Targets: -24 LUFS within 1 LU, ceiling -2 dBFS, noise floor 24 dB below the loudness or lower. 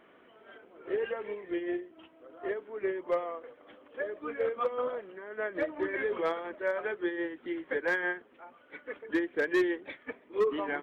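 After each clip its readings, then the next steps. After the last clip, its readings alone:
clipped 0.2%; flat tops at -21.0 dBFS; loudness -33.5 LUFS; peak -21.0 dBFS; loudness target -24.0 LUFS
-> clip repair -21 dBFS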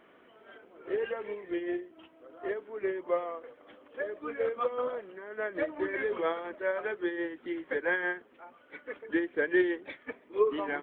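clipped 0.0%; loudness -33.0 LUFS; peak -15.0 dBFS; loudness target -24.0 LUFS
-> gain +9 dB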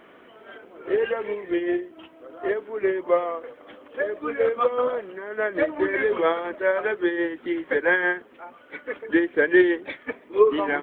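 loudness -24.0 LUFS; peak -6.0 dBFS; noise floor -51 dBFS

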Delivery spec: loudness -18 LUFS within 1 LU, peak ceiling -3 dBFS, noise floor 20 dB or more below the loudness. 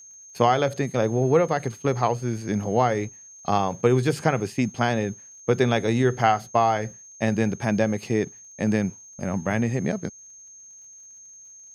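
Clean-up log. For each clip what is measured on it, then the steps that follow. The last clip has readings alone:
ticks 57/s; steady tone 6400 Hz; tone level -44 dBFS; loudness -24.0 LUFS; peak -4.5 dBFS; loudness target -18.0 LUFS
-> de-click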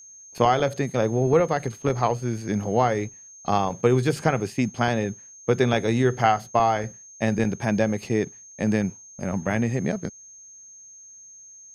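ticks 0.085/s; steady tone 6400 Hz; tone level -44 dBFS
-> notch 6400 Hz, Q 30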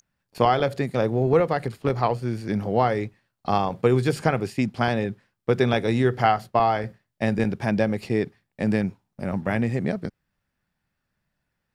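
steady tone none; loudness -24.0 LUFS; peak -4.5 dBFS; loudness target -18.0 LUFS
-> gain +6 dB; limiter -3 dBFS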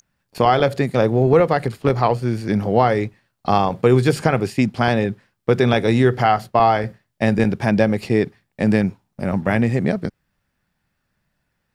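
loudness -18.5 LUFS; peak -3.0 dBFS; noise floor -74 dBFS

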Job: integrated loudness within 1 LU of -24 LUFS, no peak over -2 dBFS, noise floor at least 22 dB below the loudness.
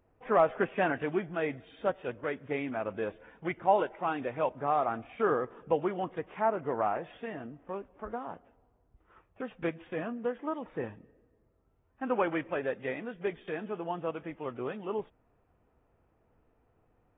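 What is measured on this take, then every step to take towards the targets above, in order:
loudness -33.0 LUFS; peak -13.0 dBFS; loudness target -24.0 LUFS
-> gain +9 dB

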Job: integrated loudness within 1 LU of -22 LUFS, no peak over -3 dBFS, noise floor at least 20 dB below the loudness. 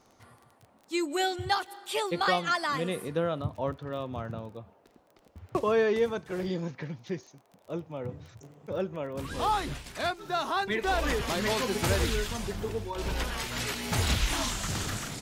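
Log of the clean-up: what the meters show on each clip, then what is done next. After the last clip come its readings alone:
ticks 20/s; loudness -30.5 LUFS; peak -13.0 dBFS; loudness target -22.0 LUFS
-> de-click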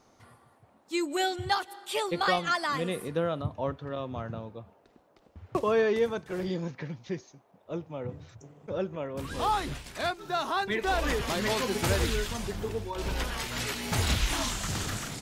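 ticks 0/s; loudness -30.5 LUFS; peak -13.0 dBFS; loudness target -22.0 LUFS
-> gain +8.5 dB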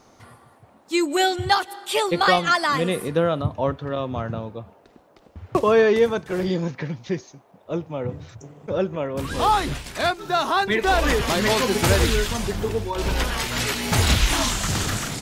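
loudness -22.0 LUFS; peak -4.5 dBFS; noise floor -55 dBFS

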